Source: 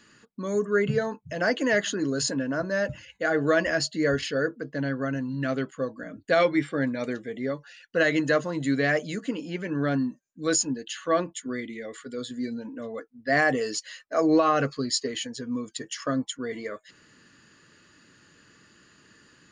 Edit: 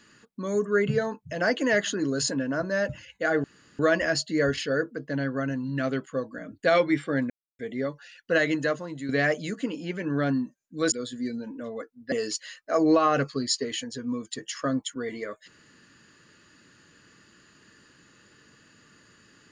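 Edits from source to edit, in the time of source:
3.44 s: insert room tone 0.35 s
6.95–7.24 s: mute
7.97–8.74 s: fade out, to -10.5 dB
10.57–12.10 s: delete
13.30–13.55 s: delete

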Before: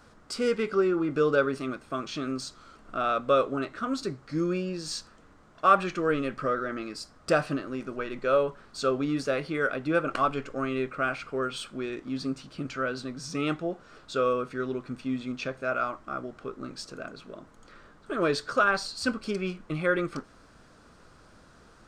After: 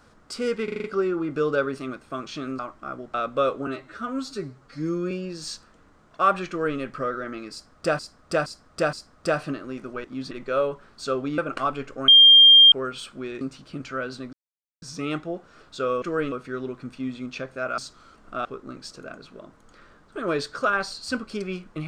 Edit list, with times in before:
0.64 s: stutter 0.04 s, 6 plays
2.39–3.06 s: swap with 15.84–16.39 s
3.59–4.55 s: stretch 1.5×
5.93–6.23 s: copy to 14.38 s
6.96–7.43 s: loop, 4 plays
9.14–9.96 s: delete
10.66–11.30 s: bleep 3.2 kHz -8 dBFS
11.99–12.26 s: move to 8.07 s
13.18 s: insert silence 0.49 s

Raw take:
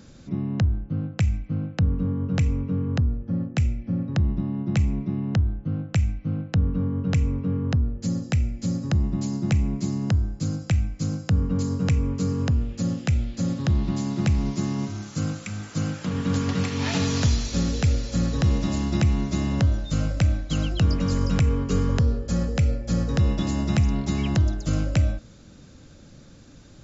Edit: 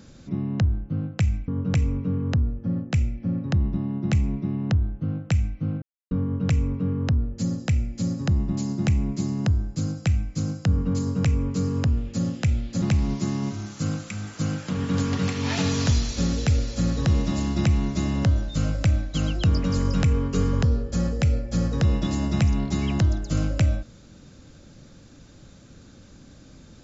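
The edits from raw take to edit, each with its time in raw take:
1.48–2.12 s: delete
6.46–6.75 s: mute
13.46–14.18 s: delete

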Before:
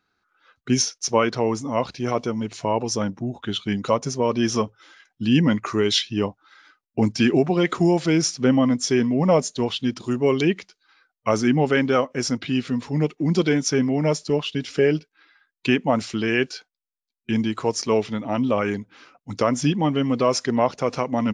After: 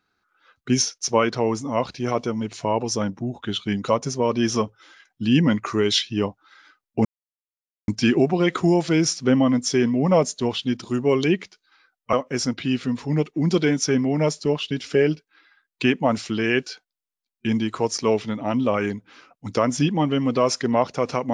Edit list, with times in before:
7.05 s: insert silence 0.83 s
11.30–11.97 s: delete

